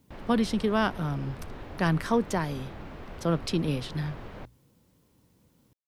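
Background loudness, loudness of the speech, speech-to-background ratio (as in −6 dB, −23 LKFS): −43.5 LKFS, −29.0 LKFS, 14.5 dB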